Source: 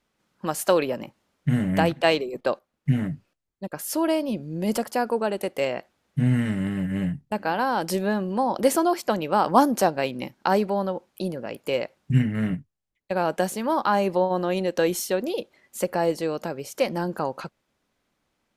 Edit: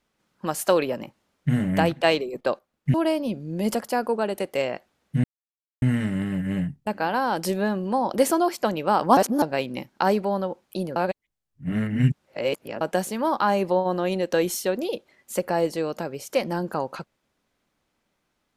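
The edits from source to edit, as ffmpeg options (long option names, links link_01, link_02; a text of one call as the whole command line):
ffmpeg -i in.wav -filter_complex "[0:a]asplit=7[link_01][link_02][link_03][link_04][link_05][link_06][link_07];[link_01]atrim=end=2.942[link_08];[link_02]atrim=start=3.968:end=6.27,asetpts=PTS-STARTPTS,afade=type=out:start_time=2.298:duration=0.004:curve=hsin,apad=pad_dur=0.58[link_09];[link_03]atrim=start=6.27:end=9.622,asetpts=PTS-STARTPTS,afade=type=in:duration=0.004:curve=hsin[link_10];[link_04]atrim=start=9.618:end=9.872,asetpts=PTS-STARTPTS,areverse[link_11];[link_05]atrim=start=9.868:end=11.412[link_12];[link_06]atrim=start=11.408:end=13.262,asetpts=PTS-STARTPTS,areverse[link_13];[link_07]atrim=start=13.258[link_14];[link_09][link_10]concat=n=2:v=0:a=1[link_15];[link_08][link_15]acrossfade=duration=0.004:curve1=hsin:curve2=hsin[link_16];[link_16][link_11]acrossfade=duration=0.004:curve1=hsin:curve2=hsin[link_17];[link_17][link_12]acrossfade=duration=0.004:curve1=hsin:curve2=hsin[link_18];[link_18][link_13]acrossfade=duration=0.004:curve1=hsin:curve2=hsin[link_19];[link_19][link_14]acrossfade=duration=0.004:curve1=hsin:curve2=hsin" out.wav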